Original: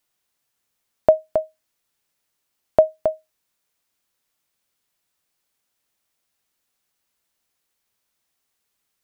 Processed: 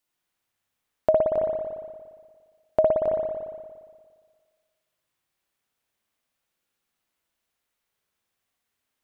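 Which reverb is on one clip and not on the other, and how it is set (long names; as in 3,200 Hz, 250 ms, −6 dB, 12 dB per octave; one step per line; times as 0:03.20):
spring reverb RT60 1.7 s, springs 58 ms, chirp 45 ms, DRR −3.5 dB
level −6.5 dB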